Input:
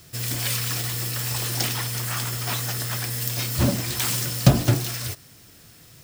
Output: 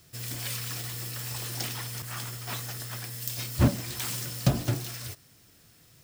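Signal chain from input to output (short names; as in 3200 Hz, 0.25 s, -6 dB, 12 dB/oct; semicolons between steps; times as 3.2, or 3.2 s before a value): 2.02–3.68 three-band expander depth 100%; gain -8.5 dB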